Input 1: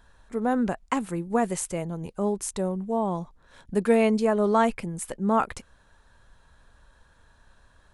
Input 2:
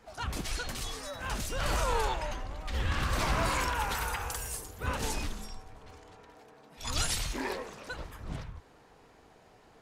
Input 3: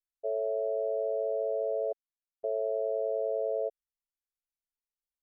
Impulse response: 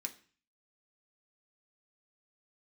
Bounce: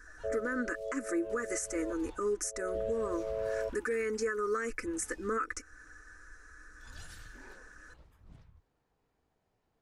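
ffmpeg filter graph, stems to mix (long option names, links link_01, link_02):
-filter_complex "[0:a]aecho=1:1:4:0.75,alimiter=limit=-14dB:level=0:latency=1:release=80,firequalizer=gain_entry='entry(100,0);entry(160,-28);entry(320,14);entry(780,-27);entry(1200,10);entry(1700,14);entry(3300,-14);entry(5700,13);entry(9700,2)':delay=0.05:min_phase=1,volume=-3dB,asplit=2[link_01][link_02];[1:a]lowshelf=frequency=210:gain=7.5,flanger=delay=9.9:depth=6.7:regen=-65:speed=0.84:shape=triangular,volume=-18dB[link_03];[2:a]volume=-3dB[link_04];[link_02]apad=whole_len=230484[link_05];[link_04][link_05]sidechaincompress=threshold=-29dB:ratio=8:attack=16:release=246[link_06];[link_01][link_03][link_06]amix=inputs=3:normalize=0,alimiter=level_in=0.5dB:limit=-24dB:level=0:latency=1:release=293,volume=-0.5dB"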